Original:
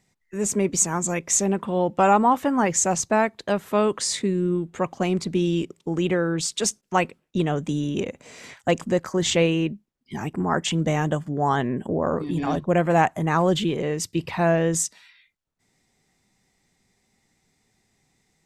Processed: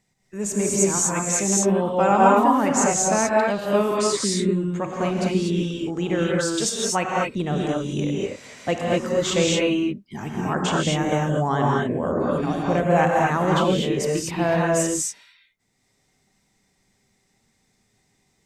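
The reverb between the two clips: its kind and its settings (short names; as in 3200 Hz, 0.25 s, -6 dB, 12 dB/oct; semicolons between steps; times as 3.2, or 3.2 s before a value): non-linear reverb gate 0.27 s rising, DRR -3 dB; gain -3 dB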